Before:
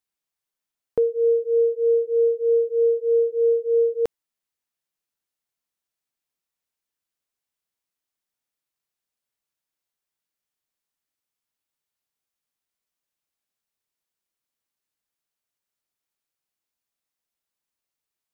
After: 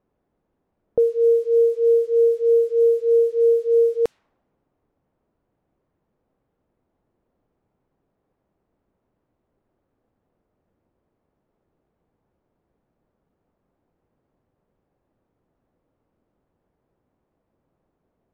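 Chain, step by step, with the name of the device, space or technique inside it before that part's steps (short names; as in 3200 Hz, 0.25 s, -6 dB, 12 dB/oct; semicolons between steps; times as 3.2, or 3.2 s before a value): cassette deck with a dynamic noise filter (white noise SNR 33 dB; low-pass opened by the level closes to 490 Hz, open at -16.5 dBFS); gain +2.5 dB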